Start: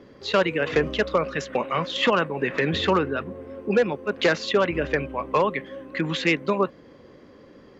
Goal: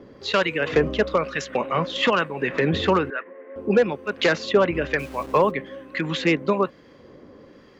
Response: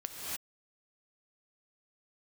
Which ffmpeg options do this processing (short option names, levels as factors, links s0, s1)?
-filter_complex "[0:a]asettb=1/sr,asplit=3[s0][s1][s2];[s0]atrim=end=3.104[s3];[s1]atrim=start=3.1:end=3.56,asetpts=PTS-STARTPTS,afade=t=in:d=0.004:c=qsin,afade=t=out:st=0.456:d=0.004:c=qsin,highpass=f=370:w=0.5412,highpass=f=370:w=1.3066,equalizer=f=390:t=q:w=4:g=-7,equalizer=f=760:t=q:w=4:g=-8,equalizer=f=1300:t=q:w=4:g=-4,equalizer=f=1900:t=q:w=4:g=9,lowpass=f=2300:w=0.5412,lowpass=f=2300:w=1.3066[s4];[s2]atrim=start=3.556[s5];[s3][s4]acrossfade=d=0.004:c1=hsin:c2=qsin[s6];[s6][s5]acrossfade=d=0.004:c1=qsin:c2=hsin,asplit=3[s7][s8][s9];[s7]afade=t=out:st=4.98:d=0.02[s10];[s8]aeval=exprs='val(0)*gte(abs(val(0)),0.00944)':c=same,afade=t=in:st=4.98:d=0.02,afade=t=out:st=5.5:d=0.02[s11];[s9]afade=t=in:st=5.5:d=0.02[s12];[s10][s11][s12]amix=inputs=3:normalize=0,acrossover=split=1200[s13][s14];[s13]aeval=exprs='val(0)*(1-0.5/2+0.5/2*cos(2*PI*1.1*n/s))':c=same[s15];[s14]aeval=exprs='val(0)*(1-0.5/2-0.5/2*cos(2*PI*1.1*n/s))':c=same[s16];[s15][s16]amix=inputs=2:normalize=0,volume=1.5"